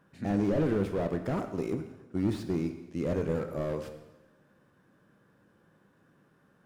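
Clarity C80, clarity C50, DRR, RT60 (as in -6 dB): 11.5 dB, 9.5 dB, 7.0 dB, 1.1 s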